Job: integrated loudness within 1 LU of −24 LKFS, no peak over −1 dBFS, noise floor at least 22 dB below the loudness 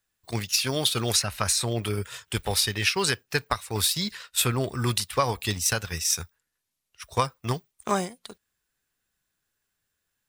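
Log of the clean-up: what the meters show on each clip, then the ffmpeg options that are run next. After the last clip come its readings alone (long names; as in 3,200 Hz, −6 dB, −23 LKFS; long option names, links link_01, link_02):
integrated loudness −26.0 LKFS; sample peak −7.5 dBFS; target loudness −24.0 LKFS
→ -af "volume=2dB"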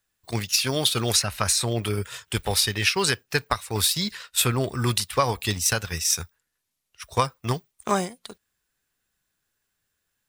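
integrated loudness −24.0 LKFS; sample peak −5.5 dBFS; background noise floor −79 dBFS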